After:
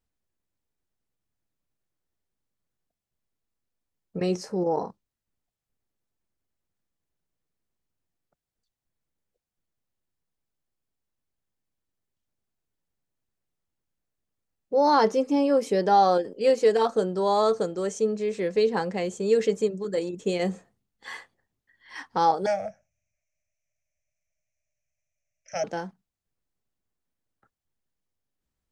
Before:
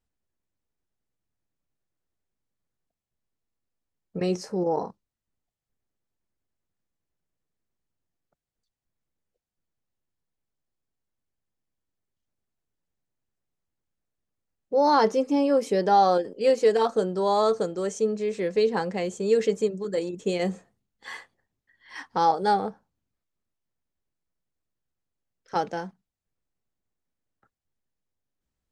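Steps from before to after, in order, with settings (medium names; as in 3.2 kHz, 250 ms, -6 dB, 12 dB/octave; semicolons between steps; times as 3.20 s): 22.46–25.64 s: FFT filter 130 Hz 0 dB, 420 Hz -28 dB, 610 Hz +13 dB, 950 Hz -25 dB, 2.4 kHz +14 dB, 4 kHz -25 dB, 5.9 kHz +15 dB, 8.9 kHz -7 dB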